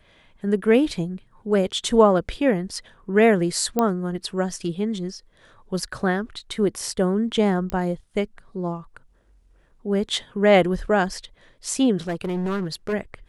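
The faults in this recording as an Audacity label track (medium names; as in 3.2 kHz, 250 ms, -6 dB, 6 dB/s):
3.790000	3.790000	pop -8 dBFS
7.700000	7.700000	pop -14 dBFS
12.070000	12.940000	clipped -22 dBFS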